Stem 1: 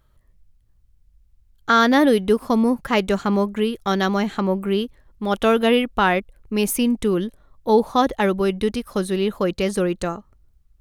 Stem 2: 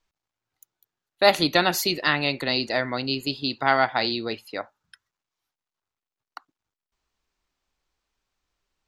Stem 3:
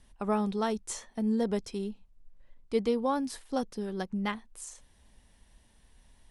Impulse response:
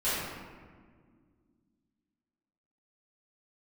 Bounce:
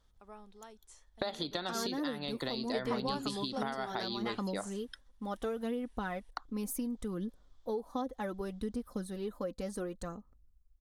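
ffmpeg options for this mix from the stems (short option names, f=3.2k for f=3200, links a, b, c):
-filter_complex "[0:a]aecho=1:1:4:0.41,aphaser=in_gain=1:out_gain=1:delay=3.9:decay=0.45:speed=0.68:type=sinusoidal,volume=-15.5dB,asplit=2[a][b];[1:a]lowpass=8.3k,equalizer=f=3.4k:w=4.9:g=12.5,acompressor=threshold=-28dB:ratio=4,volume=2.5dB[c];[2:a]highpass=f=470:p=1,volume=-6dB[d];[b]apad=whole_len=278041[e];[d][e]sidechaingate=range=-14dB:threshold=-53dB:ratio=16:detection=peak[f];[a][c]amix=inputs=2:normalize=0,equalizer=f=2.6k:w=1.7:g=-11.5,acompressor=threshold=-32dB:ratio=12,volume=0dB[g];[f][g]amix=inputs=2:normalize=0"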